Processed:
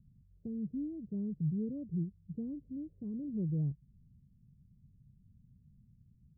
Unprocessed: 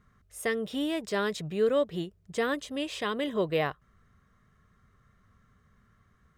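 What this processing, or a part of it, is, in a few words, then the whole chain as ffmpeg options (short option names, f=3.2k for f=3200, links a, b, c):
the neighbour's flat through the wall: -af "lowpass=f=240:w=0.5412,lowpass=f=240:w=1.3066,equalizer=f=140:t=o:w=0.59:g=7.5"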